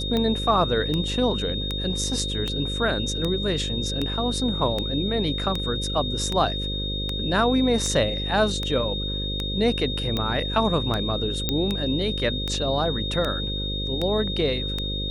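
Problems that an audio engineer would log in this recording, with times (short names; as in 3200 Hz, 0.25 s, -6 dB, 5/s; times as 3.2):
buzz 50 Hz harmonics 11 -30 dBFS
tick 78 rpm -13 dBFS
tone 3700 Hz -29 dBFS
11.49 pop -8 dBFS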